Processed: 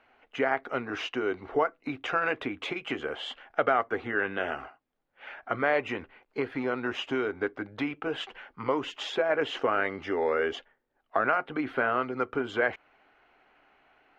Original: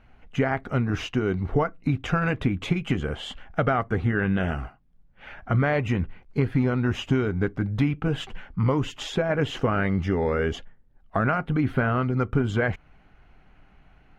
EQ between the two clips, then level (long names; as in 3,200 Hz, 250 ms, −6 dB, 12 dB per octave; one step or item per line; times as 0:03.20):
three-way crossover with the lows and the highs turned down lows −21 dB, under 290 Hz, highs −13 dB, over 5,000 Hz
low-shelf EQ 75 Hz −9.5 dB
parametric band 180 Hz −9.5 dB 0.38 octaves
0.0 dB